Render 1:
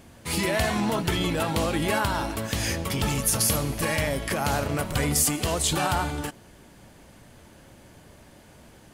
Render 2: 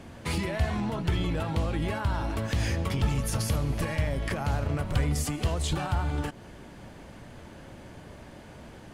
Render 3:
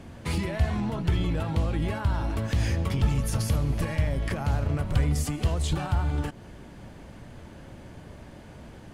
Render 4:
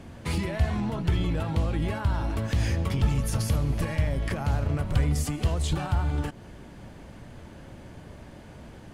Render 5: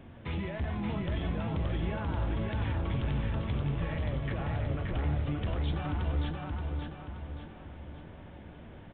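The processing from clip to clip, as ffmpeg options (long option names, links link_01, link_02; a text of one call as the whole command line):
ffmpeg -i in.wav -filter_complex "[0:a]aemphasis=mode=reproduction:type=50kf,acrossover=split=120[link_01][link_02];[link_02]acompressor=threshold=-35dB:ratio=10[link_03];[link_01][link_03]amix=inputs=2:normalize=0,volume=5dB" out.wav
ffmpeg -i in.wav -af "lowshelf=frequency=240:gain=5,volume=-1.5dB" out.wav
ffmpeg -i in.wav -af anull out.wav
ffmpeg -i in.wav -af "flanger=delay=7.7:depth=6.6:regen=-72:speed=0.45:shape=triangular,aresample=8000,volume=27dB,asoftclip=hard,volume=-27dB,aresample=44100,aecho=1:1:576|1152|1728|2304|2880|3456:0.708|0.319|0.143|0.0645|0.029|0.0131,volume=-1.5dB" out.wav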